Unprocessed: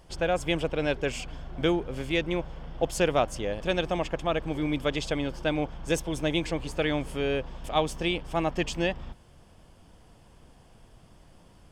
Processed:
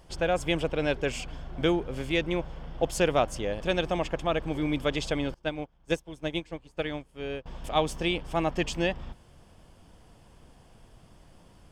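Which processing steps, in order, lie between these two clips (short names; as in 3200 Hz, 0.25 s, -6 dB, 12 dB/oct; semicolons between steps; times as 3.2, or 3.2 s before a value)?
5.34–7.46 upward expander 2.5:1, over -39 dBFS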